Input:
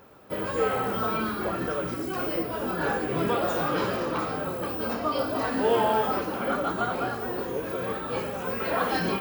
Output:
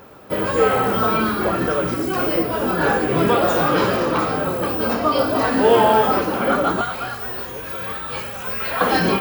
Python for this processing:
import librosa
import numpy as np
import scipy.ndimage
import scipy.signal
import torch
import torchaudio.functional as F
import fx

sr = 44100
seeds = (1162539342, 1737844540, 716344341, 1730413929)

y = fx.peak_eq(x, sr, hz=330.0, db=-14.5, octaves=2.9, at=(6.81, 8.81))
y = y * librosa.db_to_amplitude(9.0)